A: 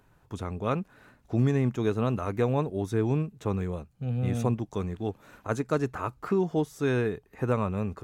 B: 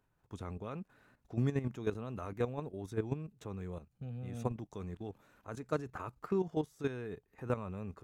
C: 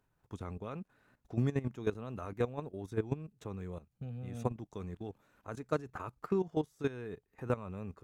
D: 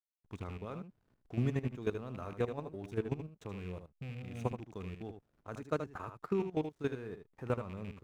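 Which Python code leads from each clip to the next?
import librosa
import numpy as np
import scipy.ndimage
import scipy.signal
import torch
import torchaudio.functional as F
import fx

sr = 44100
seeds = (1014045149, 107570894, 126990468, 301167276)

y1 = fx.level_steps(x, sr, step_db=12)
y1 = y1 * 10.0 ** (-5.5 / 20.0)
y2 = fx.transient(y1, sr, attack_db=2, sustain_db=-4)
y3 = fx.rattle_buzz(y2, sr, strikes_db=-38.0, level_db=-40.0)
y3 = fx.backlash(y3, sr, play_db=-58.0)
y3 = y3 + 10.0 ** (-8.5 / 20.0) * np.pad(y3, (int(77 * sr / 1000.0), 0))[:len(y3)]
y3 = y3 * 10.0 ** (-1.5 / 20.0)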